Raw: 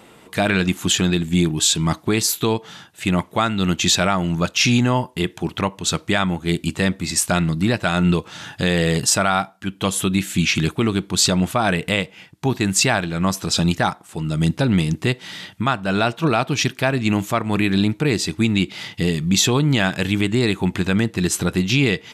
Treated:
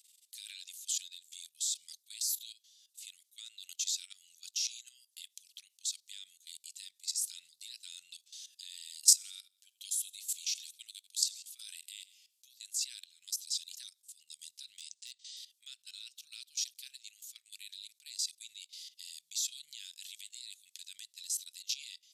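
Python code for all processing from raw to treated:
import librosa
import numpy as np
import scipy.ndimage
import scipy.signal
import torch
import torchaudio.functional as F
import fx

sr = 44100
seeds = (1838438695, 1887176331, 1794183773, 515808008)

y = fx.chain(x, sr, fx.highpass(hz=440.0, slope=12),
    fx.high_shelf(hz=11000.0, db=5.5),
    fx.echo_feedback(ms=84, feedback_pct=38, wet_db=-20), at=(9.05, 12.47))
y = fx.chain(y, sr, fx.steep_lowpass(hz=8800.0, slope=48),
    fx.clip_hard(threshold_db=-12.0), at=(14.77, 15.37))
y = scipy.signal.sosfilt(scipy.signal.cheby2(4, 70, 1000.0, 'highpass', fs=sr, output='sos'), y)
y = fx.level_steps(y, sr, step_db=15)
y = y * 10.0 ** (-3.0 / 20.0)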